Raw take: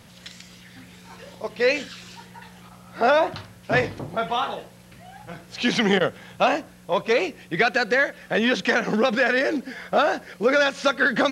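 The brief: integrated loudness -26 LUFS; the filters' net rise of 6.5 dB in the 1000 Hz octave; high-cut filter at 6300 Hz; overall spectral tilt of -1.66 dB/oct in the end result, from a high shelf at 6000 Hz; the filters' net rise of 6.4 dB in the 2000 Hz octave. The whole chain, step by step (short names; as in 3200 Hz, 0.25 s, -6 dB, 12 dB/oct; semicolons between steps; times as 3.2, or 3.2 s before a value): LPF 6300 Hz; bell 1000 Hz +8 dB; bell 2000 Hz +6 dB; high shelf 6000 Hz -8.5 dB; gain -8 dB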